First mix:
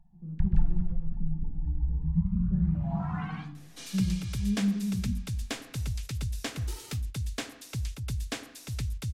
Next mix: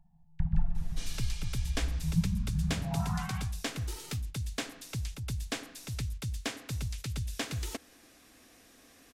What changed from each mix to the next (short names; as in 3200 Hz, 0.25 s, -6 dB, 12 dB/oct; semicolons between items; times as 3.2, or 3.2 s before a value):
speech: muted; second sound: entry -2.80 s; master: add low shelf 110 Hz -4.5 dB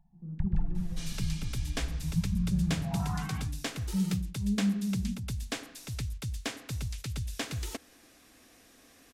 speech: unmuted; first sound: send -8.0 dB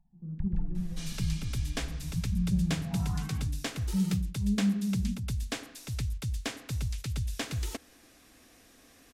first sound -6.5 dB; master: add low shelf 110 Hz +4.5 dB